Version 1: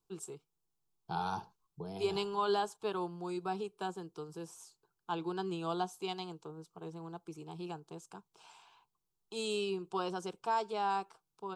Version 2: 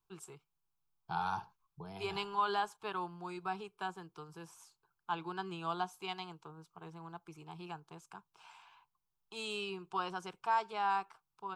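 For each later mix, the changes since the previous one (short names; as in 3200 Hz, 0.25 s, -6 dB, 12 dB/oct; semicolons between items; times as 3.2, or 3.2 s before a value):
master: add graphic EQ 250/500/1000/2000/4000/8000 Hz -7/-8/+3/+6/-3/-6 dB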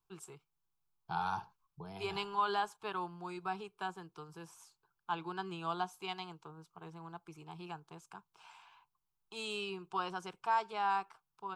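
none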